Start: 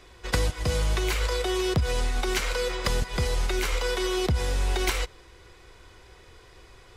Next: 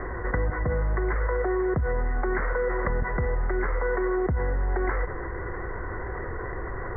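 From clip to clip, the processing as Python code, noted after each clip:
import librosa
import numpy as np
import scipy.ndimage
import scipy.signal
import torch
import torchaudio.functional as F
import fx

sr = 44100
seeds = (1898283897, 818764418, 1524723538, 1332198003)

y = scipy.signal.sosfilt(scipy.signal.cheby1(8, 1.0, 2000.0, 'lowpass', fs=sr, output='sos'), x)
y = fx.env_flatten(y, sr, amount_pct=70)
y = y * librosa.db_to_amplitude(-2.5)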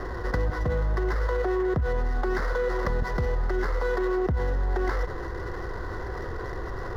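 y = scipy.ndimage.median_filter(x, 15, mode='constant')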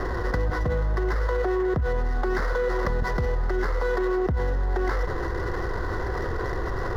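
y = fx.env_flatten(x, sr, amount_pct=50)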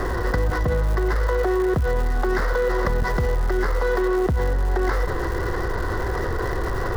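y = fx.dmg_crackle(x, sr, seeds[0], per_s=280.0, level_db=-33.0)
y = y * librosa.db_to_amplitude(3.5)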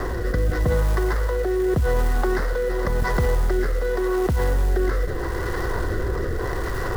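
y = fx.mod_noise(x, sr, seeds[1], snr_db=25)
y = fx.rotary(y, sr, hz=0.85)
y = y * librosa.db_to_amplitude(1.5)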